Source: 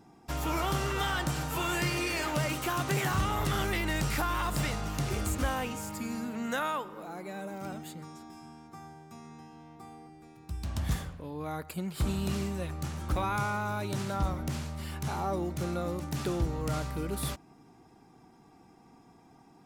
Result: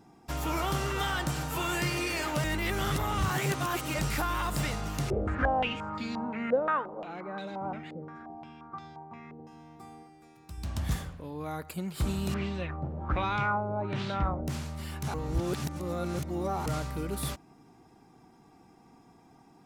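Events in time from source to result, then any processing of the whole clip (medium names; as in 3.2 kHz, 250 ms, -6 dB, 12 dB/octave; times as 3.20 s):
2.44–3.99 s: reverse
5.10–9.47 s: step-sequenced low-pass 5.7 Hz 530–3900 Hz
10.03–10.58 s: bass shelf 330 Hz -7 dB
12.34–14.48 s: LFO low-pass sine 1.3 Hz 540–3900 Hz
15.14–16.66 s: reverse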